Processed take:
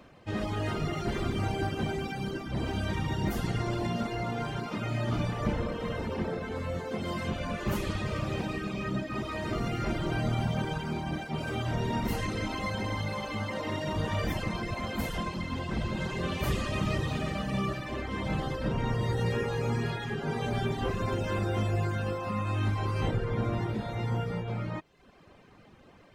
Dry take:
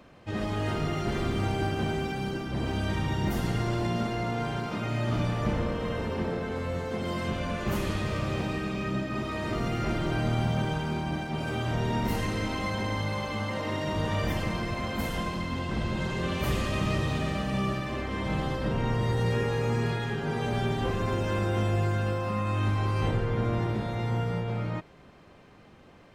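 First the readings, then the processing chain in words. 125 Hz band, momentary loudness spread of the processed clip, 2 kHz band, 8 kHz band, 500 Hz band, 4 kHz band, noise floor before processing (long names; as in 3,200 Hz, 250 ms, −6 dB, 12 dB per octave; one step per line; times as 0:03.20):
−2.5 dB, 4 LU, −2.0 dB, −2.0 dB, −2.5 dB, −2.0 dB, −53 dBFS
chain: reverb reduction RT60 0.76 s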